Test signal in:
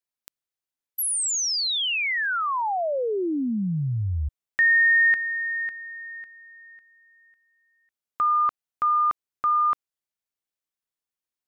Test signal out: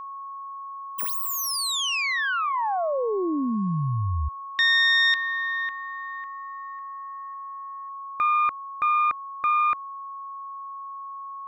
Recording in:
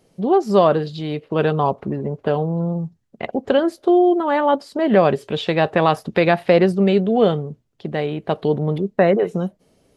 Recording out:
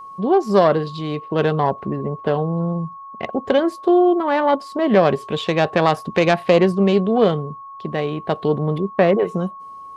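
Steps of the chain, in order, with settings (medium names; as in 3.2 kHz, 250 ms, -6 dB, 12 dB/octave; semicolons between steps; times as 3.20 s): self-modulated delay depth 0.086 ms; whistle 1.1 kHz -34 dBFS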